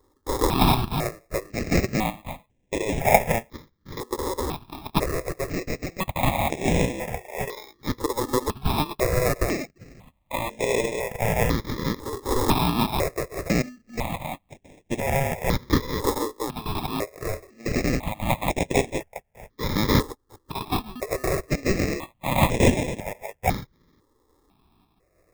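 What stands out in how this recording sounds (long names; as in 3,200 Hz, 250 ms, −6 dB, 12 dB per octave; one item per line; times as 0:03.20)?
aliases and images of a low sample rate 1,500 Hz, jitter 0%
sample-and-hold tremolo
notches that jump at a steady rate 2 Hz 670–4,500 Hz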